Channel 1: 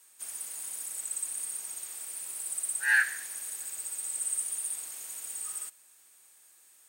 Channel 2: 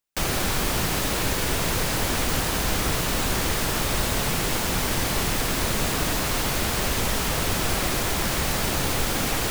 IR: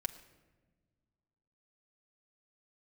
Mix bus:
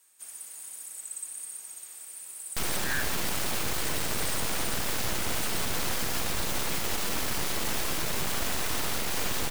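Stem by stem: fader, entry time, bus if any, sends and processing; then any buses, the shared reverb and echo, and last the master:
-3.5 dB, 0.00 s, no send, none
+2.0 dB, 2.40 s, no send, full-wave rectifier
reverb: none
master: peak limiter -18 dBFS, peak gain reduction 9 dB

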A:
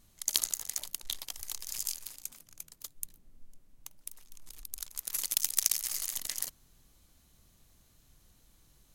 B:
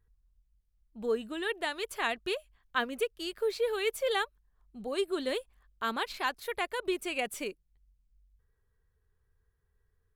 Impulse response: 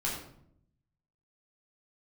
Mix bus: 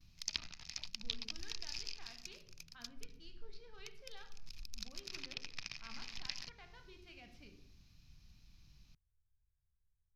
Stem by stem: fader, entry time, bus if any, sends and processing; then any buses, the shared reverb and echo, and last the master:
+3.0 dB, 0.00 s, no send, peaking EQ 2.5 kHz +11.5 dB 0.25 oct; gate with hold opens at -54 dBFS
-16.0 dB, 0.00 s, send -6 dB, local Wiener filter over 9 samples; peak limiter -24 dBFS, peak gain reduction 8.5 dB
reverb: on, RT60 0.70 s, pre-delay 9 ms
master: low-pass that closes with the level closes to 2.2 kHz, closed at -26 dBFS; FFT filter 170 Hz 0 dB, 500 Hz -18 dB, 740 Hz -12 dB, 3.2 kHz -7 dB, 5.2 kHz +1 dB, 8.5 kHz -27 dB, 13 kHz -18 dB

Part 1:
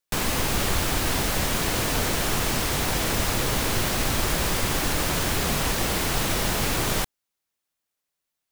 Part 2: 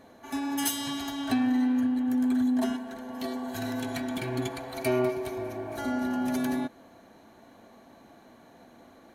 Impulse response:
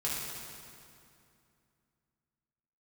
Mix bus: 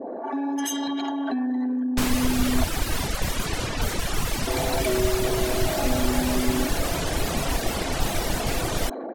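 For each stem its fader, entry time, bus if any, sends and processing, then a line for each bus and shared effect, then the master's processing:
0.0 dB, 1.85 s, no send, reverb removal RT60 1.6 s; bass shelf 79 Hz +6.5 dB
0.0 dB, 0.00 s, muted 2.64–4.47 s, no send, resonances exaggerated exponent 2; high-pass 250 Hz 24 dB/octave; level flattener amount 70%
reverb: none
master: level-controlled noise filter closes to 340 Hz, open at -20.5 dBFS

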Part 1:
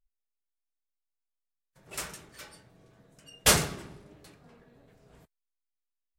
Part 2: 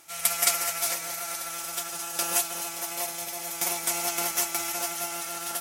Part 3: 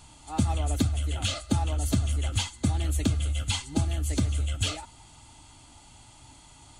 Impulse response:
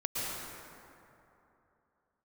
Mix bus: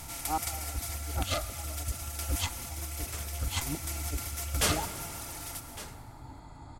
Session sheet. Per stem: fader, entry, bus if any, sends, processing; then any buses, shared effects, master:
-8.0 dB, 1.15 s, send -17 dB, echo send -15 dB, none
-17.5 dB, 0.00 s, send -8 dB, no echo send, spectral levelling over time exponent 0.4; reverb removal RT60 1.7 s
-1.5 dB, 0.00 s, send -21 dB, no echo send, local Wiener filter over 15 samples; compressor with a negative ratio -33 dBFS, ratio -0.5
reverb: on, RT60 2.9 s, pre-delay 103 ms
echo: delay 1159 ms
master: none

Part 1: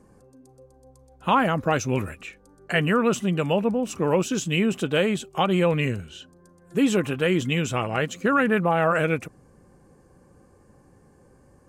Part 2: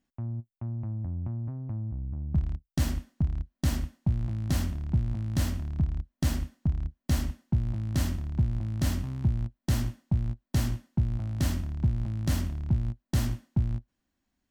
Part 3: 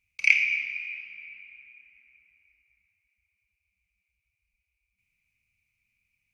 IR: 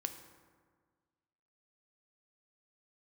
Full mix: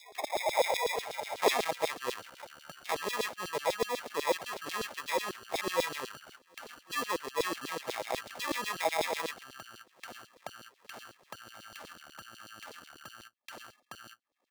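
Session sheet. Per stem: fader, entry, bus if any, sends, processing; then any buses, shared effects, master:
1.13 s -3.5 dB -> 1.80 s -11 dB, 0.15 s, no send, bass shelf 150 Hz +8.5 dB
-6.5 dB, 0.35 s, no send, median filter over 9 samples; peak limiter -23 dBFS, peak gain reduction 7 dB
-1.5 dB, 0.00 s, no send, formants replaced by sine waves; compressor with a negative ratio -31 dBFS, ratio -1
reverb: none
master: upward compressor, threshold -33 dBFS; sample-and-hold 30×; LFO high-pass saw down 8.1 Hz 390–4500 Hz

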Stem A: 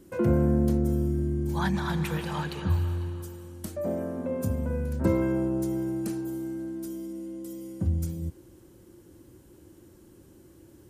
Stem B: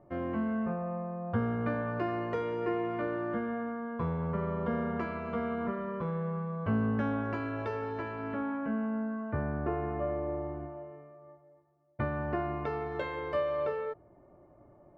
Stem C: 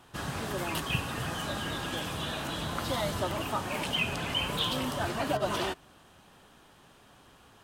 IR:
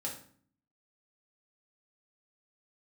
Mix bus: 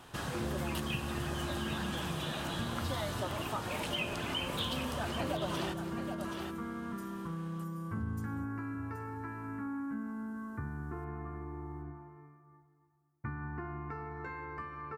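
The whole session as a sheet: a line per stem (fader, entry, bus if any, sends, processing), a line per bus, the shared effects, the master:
-6.5 dB, 0.15 s, no send, echo send -13.5 dB, none
-1.5 dB, 1.25 s, send -11 dB, no echo send, static phaser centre 1.4 kHz, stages 4
+3.0 dB, 0.00 s, no send, echo send -10.5 dB, none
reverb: on, RT60 0.50 s, pre-delay 3 ms
echo: delay 776 ms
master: compression 2:1, threshold -40 dBFS, peak gain reduction 11 dB

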